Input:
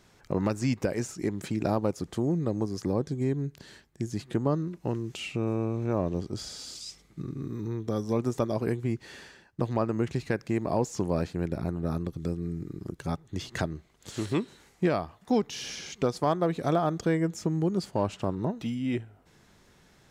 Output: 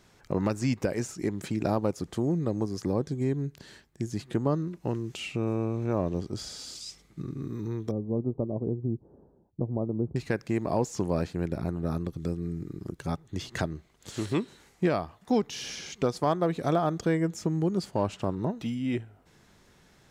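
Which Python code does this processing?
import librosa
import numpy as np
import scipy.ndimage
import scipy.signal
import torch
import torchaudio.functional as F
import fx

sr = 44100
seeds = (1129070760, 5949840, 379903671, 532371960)

y = fx.gaussian_blur(x, sr, sigma=13.0, at=(7.91, 10.16))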